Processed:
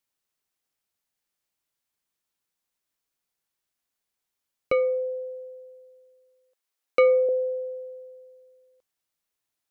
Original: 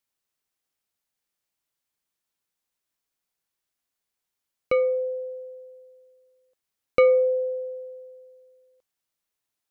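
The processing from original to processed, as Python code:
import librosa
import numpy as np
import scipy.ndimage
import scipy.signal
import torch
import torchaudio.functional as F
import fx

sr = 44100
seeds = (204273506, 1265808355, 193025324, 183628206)

y = fx.highpass(x, sr, hz=380.0, slope=12, at=(4.72, 7.29))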